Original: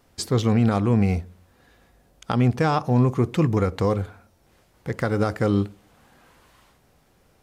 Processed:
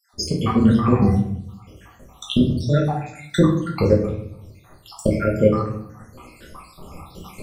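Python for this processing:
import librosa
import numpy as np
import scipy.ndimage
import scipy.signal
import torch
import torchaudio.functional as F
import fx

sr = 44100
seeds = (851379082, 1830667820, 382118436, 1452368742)

y = fx.spec_dropout(x, sr, seeds[0], share_pct=79)
y = fx.recorder_agc(y, sr, target_db=-18.0, rise_db_per_s=11.0, max_gain_db=30)
y = fx.peak_eq(y, sr, hz=1200.0, db=8.0, octaves=0.25)
y = fx.room_shoebox(y, sr, seeds[1], volume_m3=130.0, walls='mixed', distance_m=1.2)
y = F.gain(torch.from_numpy(y), 3.0).numpy()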